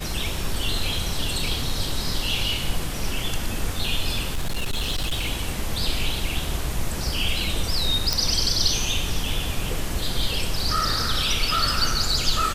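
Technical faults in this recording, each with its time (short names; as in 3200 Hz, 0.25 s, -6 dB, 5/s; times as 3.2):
4.32–5.29 clipped -20.5 dBFS
8.13 pop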